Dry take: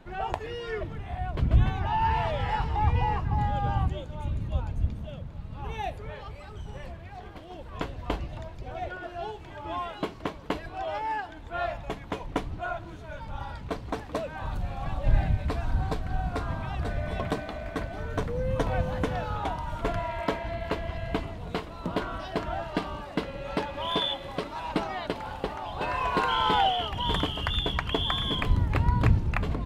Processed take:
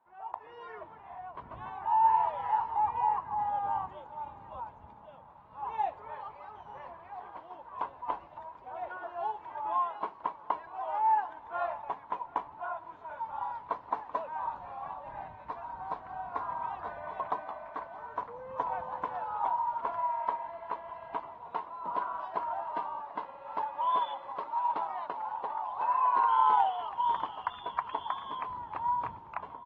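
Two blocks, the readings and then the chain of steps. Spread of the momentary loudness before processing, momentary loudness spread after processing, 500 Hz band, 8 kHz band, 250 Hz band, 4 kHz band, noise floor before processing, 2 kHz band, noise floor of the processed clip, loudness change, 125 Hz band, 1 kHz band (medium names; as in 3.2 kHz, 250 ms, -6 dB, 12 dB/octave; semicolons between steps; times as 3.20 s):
13 LU, 17 LU, -9.0 dB, no reading, -19.5 dB, under -15 dB, -43 dBFS, -10.5 dB, -52 dBFS, -3.0 dB, -28.5 dB, +2.0 dB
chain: level rider gain up to 16.5 dB; band-pass filter 960 Hz, Q 6.6; on a send: feedback delay 739 ms, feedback 49%, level -22 dB; on the sum: trim -5 dB; AAC 24 kbps 44.1 kHz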